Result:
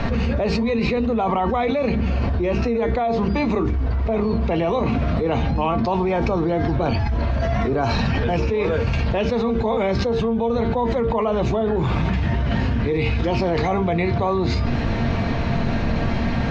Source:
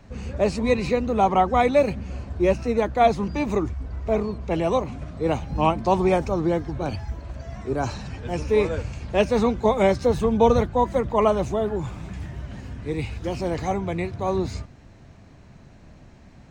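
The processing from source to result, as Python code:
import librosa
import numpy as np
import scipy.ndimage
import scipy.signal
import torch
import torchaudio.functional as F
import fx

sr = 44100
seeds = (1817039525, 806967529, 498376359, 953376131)

y = scipy.signal.sosfilt(scipy.signal.butter(4, 4500.0, 'lowpass', fs=sr, output='sos'), x)
y = fx.hum_notches(y, sr, base_hz=50, count=9)
y = fx.comb_fb(y, sr, f0_hz=230.0, decay_s=0.21, harmonics='all', damping=0.0, mix_pct=70)
y = fx.env_flatten(y, sr, amount_pct=100)
y = F.gain(torch.from_numpy(y), -4.0).numpy()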